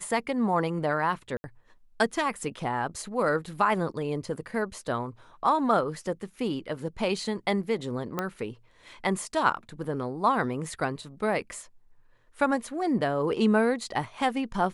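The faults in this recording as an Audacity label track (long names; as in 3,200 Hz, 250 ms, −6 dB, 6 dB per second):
1.370000	1.440000	drop-out 70 ms
8.190000	8.190000	click −14 dBFS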